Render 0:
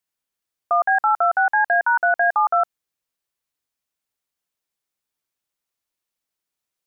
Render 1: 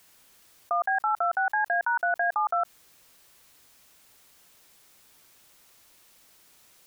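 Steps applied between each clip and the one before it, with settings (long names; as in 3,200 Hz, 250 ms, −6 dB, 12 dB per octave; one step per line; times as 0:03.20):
envelope flattener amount 50%
level −8 dB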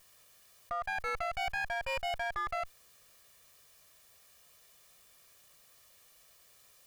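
lower of the sound and its delayed copy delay 1.7 ms
brickwall limiter −25.5 dBFS, peak gain reduction 8 dB
level −2 dB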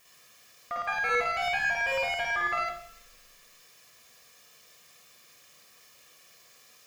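convolution reverb RT60 0.65 s, pre-delay 49 ms, DRR −2 dB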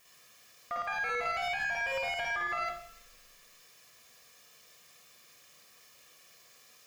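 brickwall limiter −23.5 dBFS, peak gain reduction 6 dB
level −2 dB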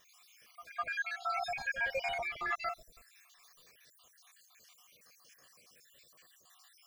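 time-frequency cells dropped at random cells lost 67%
backwards echo 205 ms −15 dB
level +1 dB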